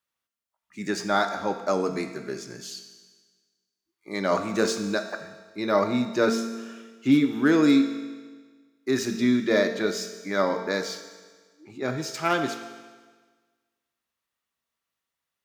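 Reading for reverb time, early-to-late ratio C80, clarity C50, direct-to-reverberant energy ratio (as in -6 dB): 1.5 s, 10.0 dB, 8.5 dB, 6.0 dB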